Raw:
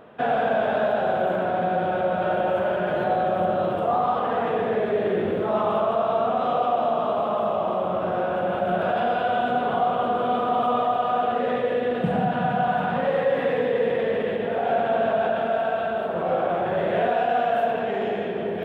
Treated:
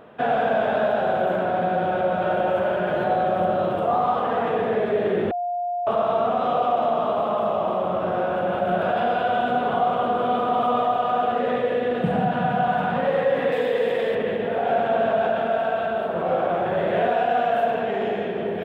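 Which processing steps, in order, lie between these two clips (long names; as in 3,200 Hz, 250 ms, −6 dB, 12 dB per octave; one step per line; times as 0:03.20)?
0:13.52–0:14.15: bass and treble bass −7 dB, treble +12 dB
far-end echo of a speakerphone 100 ms, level −20 dB
0:05.31–0:05.87: beep over 706 Hz −24 dBFS
level +1 dB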